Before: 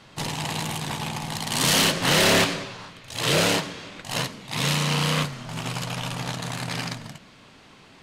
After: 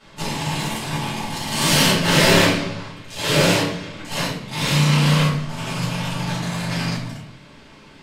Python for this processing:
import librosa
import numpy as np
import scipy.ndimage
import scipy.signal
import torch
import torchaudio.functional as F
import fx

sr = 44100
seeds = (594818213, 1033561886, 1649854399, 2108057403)

y = fx.room_shoebox(x, sr, seeds[0], volume_m3=83.0, walls='mixed', distance_m=2.7)
y = y * 10.0 ** (-7.5 / 20.0)